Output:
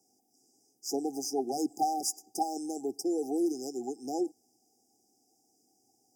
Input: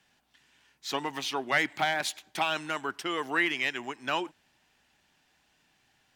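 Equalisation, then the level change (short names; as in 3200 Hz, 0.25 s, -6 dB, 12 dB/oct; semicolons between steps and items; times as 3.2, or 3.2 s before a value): HPF 130 Hz 24 dB/oct; brick-wall FIR band-stop 820–4800 Hz; fixed phaser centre 600 Hz, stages 6; +6.0 dB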